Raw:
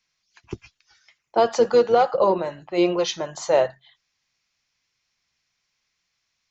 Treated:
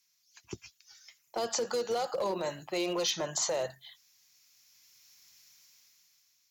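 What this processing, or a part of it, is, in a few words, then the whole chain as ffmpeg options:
FM broadcast chain: -filter_complex "[0:a]highpass=68,dynaudnorm=framelen=240:gausssize=9:maxgain=14dB,acrossover=split=430|4300[link_01][link_02][link_03];[link_01]acompressor=threshold=-25dB:ratio=4[link_04];[link_02]acompressor=threshold=-21dB:ratio=4[link_05];[link_03]acompressor=threshold=-41dB:ratio=4[link_06];[link_04][link_05][link_06]amix=inputs=3:normalize=0,aemphasis=mode=production:type=50fm,alimiter=limit=-15dB:level=0:latency=1:release=23,asoftclip=type=hard:threshold=-17dB,lowpass=frequency=15000:width=0.5412,lowpass=frequency=15000:width=1.3066,aemphasis=mode=production:type=50fm,volume=-8.5dB"

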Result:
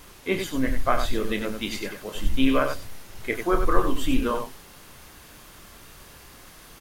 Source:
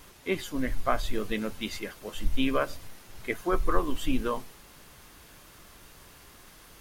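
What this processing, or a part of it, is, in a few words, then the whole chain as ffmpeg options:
slapback doubling: -filter_complex "[0:a]asplit=3[link_01][link_02][link_03];[link_02]adelay=30,volume=-8.5dB[link_04];[link_03]adelay=94,volume=-7dB[link_05];[link_01][link_04][link_05]amix=inputs=3:normalize=0,volume=3.5dB"

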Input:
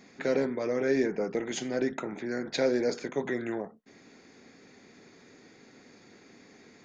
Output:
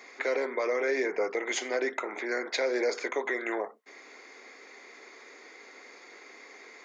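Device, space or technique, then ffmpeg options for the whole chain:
laptop speaker: -af "highpass=frequency=380:width=0.5412,highpass=frequency=380:width=1.3066,equalizer=frequency=1100:width_type=o:width=0.5:gain=7,equalizer=frequency=2100:width_type=o:width=0.22:gain=10,alimiter=limit=-24dB:level=0:latency=1:release=191,volume=4.5dB"

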